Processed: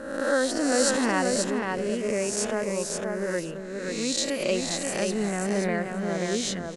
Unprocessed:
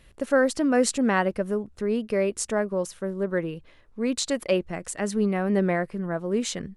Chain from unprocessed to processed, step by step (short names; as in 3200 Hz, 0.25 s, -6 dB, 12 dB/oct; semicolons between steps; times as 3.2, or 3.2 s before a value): spectral swells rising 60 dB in 1.06 s; dynamic EQ 4800 Hz, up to +4 dB, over -42 dBFS, Q 0.82; on a send: feedback echo 0.532 s, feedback 15%, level -4 dB; on the sum: gain -5 dB